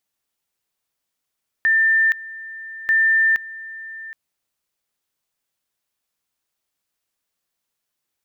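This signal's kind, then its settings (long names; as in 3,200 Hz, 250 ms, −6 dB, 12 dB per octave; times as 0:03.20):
tone at two levels in turn 1,790 Hz −13 dBFS, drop 18.5 dB, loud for 0.47 s, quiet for 0.77 s, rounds 2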